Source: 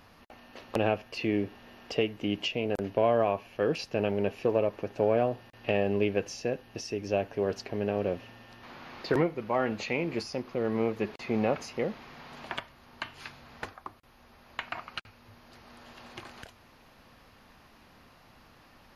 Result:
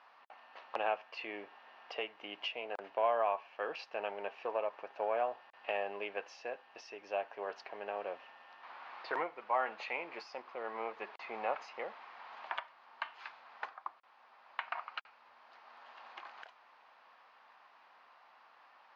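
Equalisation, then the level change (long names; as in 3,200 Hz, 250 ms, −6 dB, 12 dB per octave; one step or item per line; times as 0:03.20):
high-pass with resonance 890 Hz, resonance Q 1.7
high-frequency loss of the air 230 metres
−3.5 dB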